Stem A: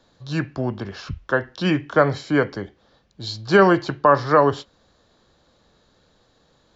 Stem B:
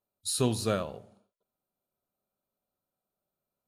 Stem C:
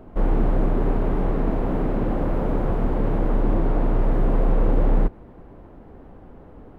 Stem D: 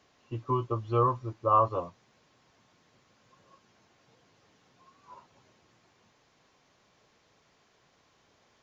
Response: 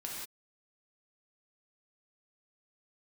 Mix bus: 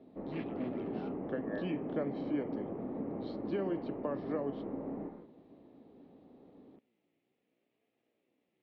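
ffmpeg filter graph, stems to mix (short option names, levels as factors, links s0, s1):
-filter_complex "[0:a]volume=0.631[s0];[1:a]highpass=1400,acrusher=samples=11:mix=1:aa=0.000001:lfo=1:lforange=11:lforate=2,adelay=50,volume=0.168,asplit=2[s1][s2];[s2]volume=0.473[s3];[2:a]lowpass=1800,volume=0.376,asplit=2[s4][s5];[s5]volume=0.355[s6];[3:a]aeval=exprs='val(0)+0.000447*(sin(2*PI*60*n/s)+sin(2*PI*2*60*n/s)/2+sin(2*PI*3*60*n/s)/3+sin(2*PI*4*60*n/s)/4+sin(2*PI*5*60*n/s)/5)':c=same,flanger=delay=7.5:depth=2.1:regen=-64:speed=0.79:shape=triangular,aeval=exprs='val(0)*sin(2*PI*400*n/s+400*0.45/0.63*sin(2*PI*0.63*n/s))':c=same,volume=1.12[s7];[s0][s4][s7]amix=inputs=3:normalize=0,equalizer=f=1100:w=0.63:g=-15,acompressor=threshold=0.0355:ratio=6,volume=1[s8];[4:a]atrim=start_sample=2205[s9];[s6][s9]afir=irnorm=-1:irlink=0[s10];[s3]aecho=0:1:247:1[s11];[s1][s8][s10][s11]amix=inputs=4:normalize=0,highpass=250,equalizer=f=260:t=q:w=4:g=4,equalizer=f=990:t=q:w=4:g=-4,equalizer=f=1500:t=q:w=4:g=-10,lowpass=f=2600:w=0.5412,lowpass=f=2600:w=1.3066"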